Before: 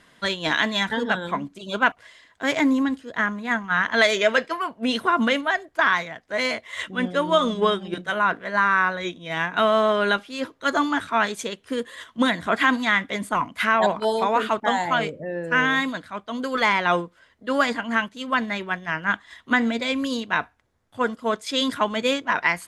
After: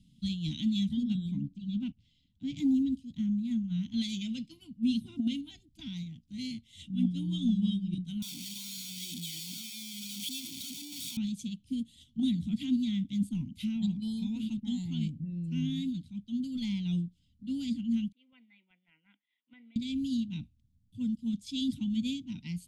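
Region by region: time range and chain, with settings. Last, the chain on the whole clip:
1.41–2.57 s: block-companded coder 7-bit + low-pass 6 kHz + treble shelf 4.3 kHz -10.5 dB
8.22–11.17 s: one-bit comparator + high-pass 650 Hz + comb 0.9 ms, depth 58%
18.12–19.76 s: Chebyshev band-pass 530–2100 Hz, order 3 + dynamic bell 860 Hz, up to -4 dB, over -36 dBFS, Q 2.1
whole clip: inverse Chebyshev band-stop 390–1800 Hz, stop band 40 dB; tilt shelf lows +9 dB; compressor with a negative ratio -19 dBFS, ratio -0.5; trim -5 dB

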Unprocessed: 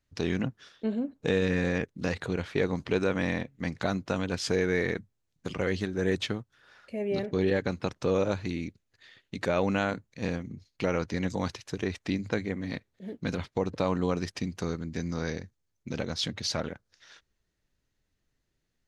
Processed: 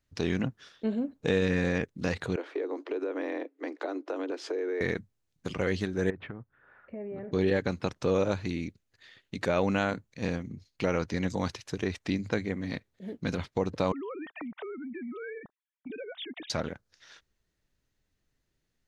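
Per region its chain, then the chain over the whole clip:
2.36–4.81 s: steep high-pass 290 Hz 96 dB/octave + tilt EQ -4.5 dB/octave + compression 5:1, threshold -29 dBFS
6.10–7.32 s: low-pass 1.9 kHz 24 dB/octave + compression 8:1, threshold -35 dBFS
13.92–16.50 s: formants replaced by sine waves + compression 4:1, threshold -37 dBFS
whole clip: none

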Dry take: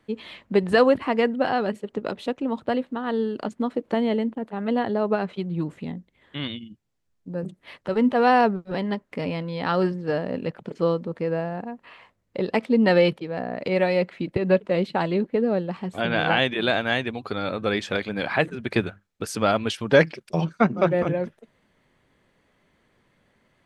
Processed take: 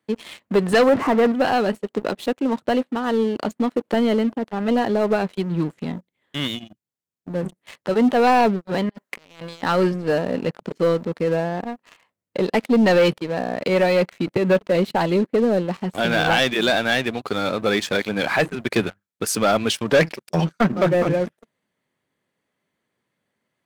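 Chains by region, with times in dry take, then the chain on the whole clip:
0.89–1.32 s: jump at every zero crossing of -27 dBFS + low-pass 1.7 kHz
8.89–9.63 s: bass shelf 430 Hz -11.5 dB + compressor with a negative ratio -40 dBFS, ratio -0.5
whole clip: high-pass 120 Hz 12 dB/octave; treble shelf 7.6 kHz +11 dB; waveshaping leveller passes 3; trim -6 dB

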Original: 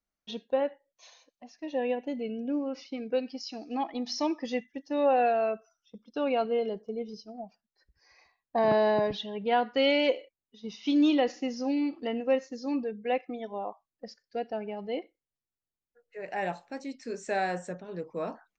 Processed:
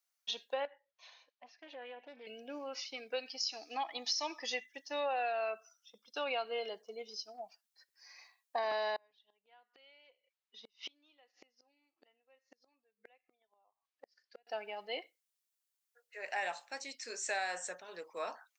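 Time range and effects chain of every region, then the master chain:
0.65–2.27 s: compression 3:1, threshold -39 dBFS + distance through air 300 m + loudspeaker Doppler distortion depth 0.2 ms
8.96–14.47 s: low-pass 3.7 kHz + inverted gate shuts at -30 dBFS, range -36 dB
whole clip: high-pass 810 Hz 12 dB/octave; treble shelf 3.1 kHz +10 dB; compression 6:1, threshold -32 dBFS

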